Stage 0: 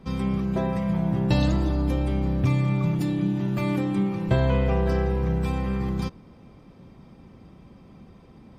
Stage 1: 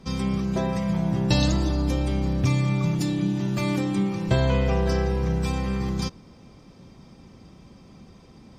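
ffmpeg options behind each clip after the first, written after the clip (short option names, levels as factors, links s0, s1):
-af "equalizer=f=6000:t=o:w=1.3:g=12.5"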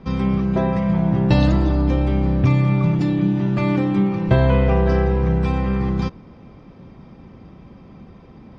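-af "lowpass=2300,volume=2"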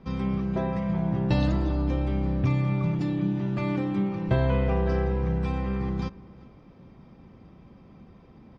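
-filter_complex "[0:a]asplit=2[s0][s1];[s1]adelay=384.8,volume=0.0891,highshelf=f=4000:g=-8.66[s2];[s0][s2]amix=inputs=2:normalize=0,volume=0.398"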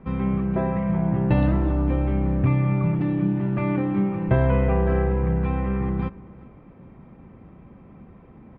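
-af "lowpass=f=2500:w=0.5412,lowpass=f=2500:w=1.3066,volume=1.58"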